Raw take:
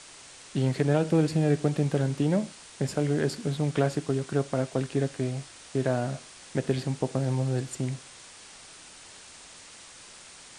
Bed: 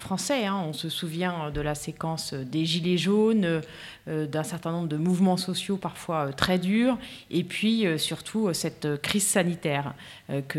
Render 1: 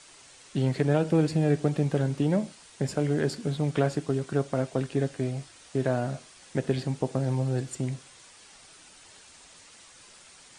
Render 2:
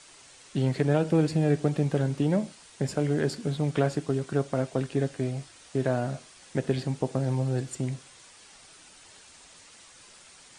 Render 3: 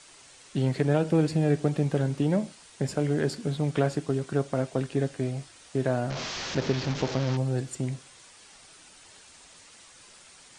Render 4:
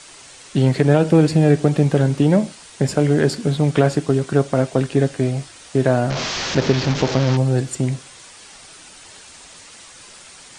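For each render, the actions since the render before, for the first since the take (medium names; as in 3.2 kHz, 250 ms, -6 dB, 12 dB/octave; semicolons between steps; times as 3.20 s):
noise reduction 6 dB, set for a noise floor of -49 dBFS
no audible change
6.10–7.37 s: one-bit delta coder 32 kbps, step -27 dBFS
trim +10 dB; peak limiter -3 dBFS, peak gain reduction 2 dB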